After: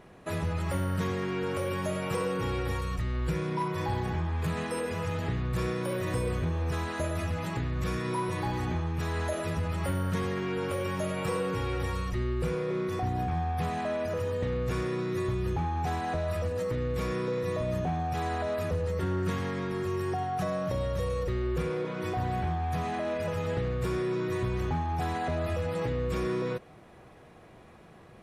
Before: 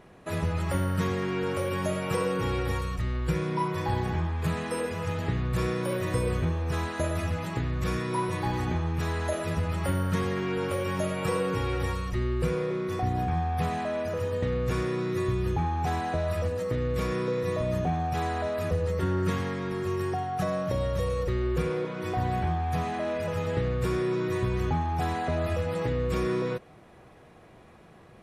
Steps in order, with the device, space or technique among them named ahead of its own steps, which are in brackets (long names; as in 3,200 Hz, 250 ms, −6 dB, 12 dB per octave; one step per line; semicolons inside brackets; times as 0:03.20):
clipper into limiter (hard clipping −21 dBFS, distortion −24 dB; brickwall limiter −23.5 dBFS, peak gain reduction 2.5 dB)